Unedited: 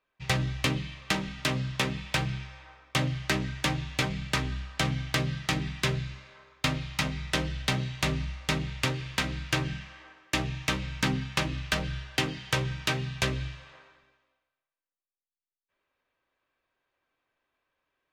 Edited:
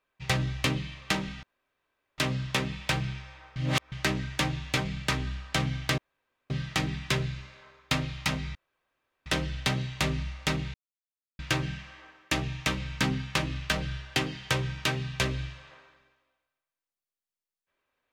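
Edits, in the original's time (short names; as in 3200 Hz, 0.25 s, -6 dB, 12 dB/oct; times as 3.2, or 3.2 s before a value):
1.43 insert room tone 0.75 s
2.81–3.17 reverse
5.23 insert room tone 0.52 s
7.28 insert room tone 0.71 s
8.76–9.41 mute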